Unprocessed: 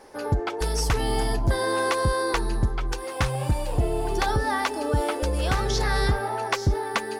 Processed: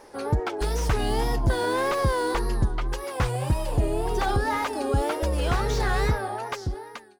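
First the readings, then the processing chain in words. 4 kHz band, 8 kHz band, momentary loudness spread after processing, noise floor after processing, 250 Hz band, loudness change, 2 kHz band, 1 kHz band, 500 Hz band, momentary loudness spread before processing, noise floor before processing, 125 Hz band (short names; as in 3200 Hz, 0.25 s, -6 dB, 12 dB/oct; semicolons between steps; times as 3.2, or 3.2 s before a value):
-3.5 dB, -4.0 dB, 7 LU, -45 dBFS, 0.0 dB, -0.5 dB, -2.0 dB, -1.0 dB, -0.5 dB, 4 LU, -33 dBFS, -0.5 dB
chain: ending faded out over 1.19 s; wow and flutter 120 cents; slew limiter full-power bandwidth 94 Hz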